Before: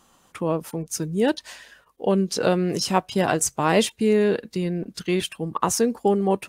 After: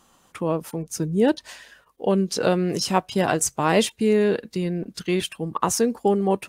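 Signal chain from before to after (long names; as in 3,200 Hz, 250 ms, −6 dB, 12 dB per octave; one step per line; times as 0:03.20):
0:00.86–0:01.49: tilt shelving filter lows +3 dB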